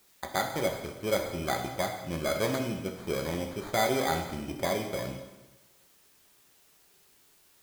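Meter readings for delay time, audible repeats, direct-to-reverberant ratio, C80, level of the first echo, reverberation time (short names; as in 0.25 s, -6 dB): none, none, 2.5 dB, 8.0 dB, none, 1.1 s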